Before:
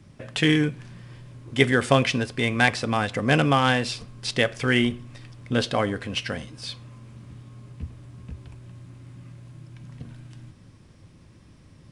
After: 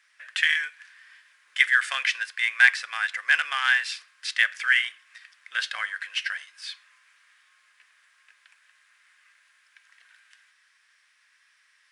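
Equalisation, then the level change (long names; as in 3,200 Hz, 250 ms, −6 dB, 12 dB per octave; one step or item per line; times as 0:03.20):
four-pole ladder high-pass 1,500 Hz, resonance 60%
+7.5 dB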